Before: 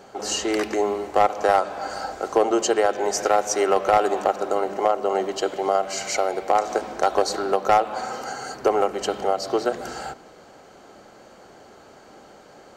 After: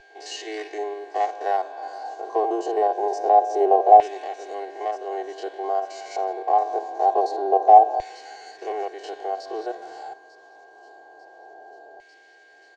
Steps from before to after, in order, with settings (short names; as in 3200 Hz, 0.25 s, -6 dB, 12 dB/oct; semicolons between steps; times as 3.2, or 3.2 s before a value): stepped spectrum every 50 ms; HPF 150 Hz 24 dB/oct; band shelf 5700 Hz +9 dB; comb 2.7 ms, depth 70%; on a send: thin delay 0.896 s, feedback 67%, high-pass 3900 Hz, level -13 dB; on the sum: LFO band-pass saw down 0.25 Hz 720–2200 Hz; whine 1600 Hz -44 dBFS; tilt -3.5 dB/oct; fixed phaser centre 540 Hz, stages 4; gain +6 dB